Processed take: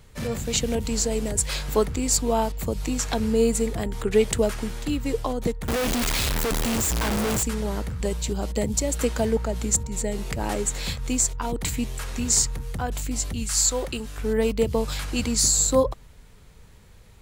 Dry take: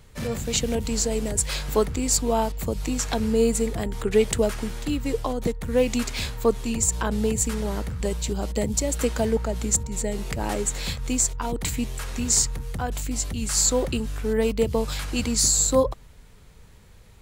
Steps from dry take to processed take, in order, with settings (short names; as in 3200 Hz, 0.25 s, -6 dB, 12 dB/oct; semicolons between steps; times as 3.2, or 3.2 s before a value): 5.68–7.43 infinite clipping; 13.42–14.17 bell 460 Hz -> 66 Hz -9 dB 2.8 oct